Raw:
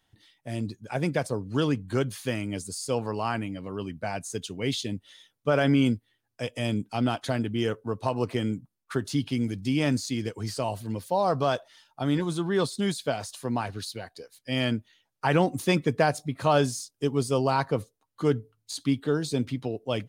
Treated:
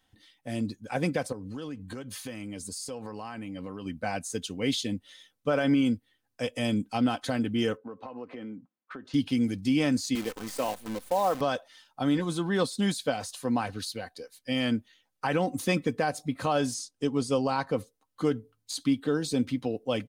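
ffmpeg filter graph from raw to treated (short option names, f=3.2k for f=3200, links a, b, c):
-filter_complex "[0:a]asettb=1/sr,asplit=3[a][b][c];[a]atrim=end=1.324[d];[b]atrim=start=1.32:end=3.86,asetpts=PTS-STARTPTS,afade=t=in:d=0.004:c=qsin,afade=t=out:st=2.536:d=0.004:c=qsin,bandreject=f=1.4k:w=24,acompressor=threshold=-34dB:ratio=10:attack=3.2:release=140:knee=1:detection=peak[e];[c]atrim=start=3.856[f];[d][e]acrossfade=d=0.004:c1=hsin:c2=qsin[g];[g][f]acrossfade=d=0.004:c1=qsin:c2=hsin,asettb=1/sr,asplit=3[h][i][j];[h]atrim=end=7.774[k];[i]atrim=start=7.77:end=9.14,asetpts=PTS-STARTPTS,afade=t=in:d=0.004:c=qsin,afade=t=out:st=1.366:d=0.004:c=qsin,highpass=210,lowpass=2.2k,acompressor=threshold=-38dB:ratio=5:attack=3.2:release=140:knee=1:detection=peak[l];[j]atrim=start=9.136[m];[k][l]acrossfade=d=0.004:c1=hsin:c2=qsin[n];[n][m]acrossfade=d=0.004:c1=qsin:c2=hsin,asettb=1/sr,asplit=3[o][p][q];[o]atrim=end=10.154[r];[p]atrim=start=10.15:end=11.41,asetpts=PTS-STARTPTS,afade=t=in:d=0.004:c=qsin,afade=t=out:st=1.256:d=0.004:c=qsin,highpass=240,equalizer=f=4.7k:t=o:w=0.57:g=-8,acrusher=bits=7:dc=4:mix=0:aa=0.000001[s];[q]atrim=start=11.406[t];[r][s]acrossfade=d=0.004:c1=hsin:c2=qsin[u];[u][t]acrossfade=d=0.004:c1=qsin:c2=hsin,asettb=1/sr,asplit=3[v][w][x];[v]atrim=end=16.744[y];[w]atrim=start=16.74:end=17.67,asetpts=PTS-STARTPTS,afade=t=in:d=0.004:c=qsin,afade=t=out:st=0.926:d=0.004:c=qsin,deesser=0.35,lowpass=9k[z];[x]atrim=start=17.666[aa];[y][z]acrossfade=d=0.004:c1=hsin:c2=qsin[ab];[ab][aa]acrossfade=d=0.004:c1=qsin:c2=hsin,aecho=1:1:3.9:0.44,alimiter=limit=-16dB:level=0:latency=1:release=199"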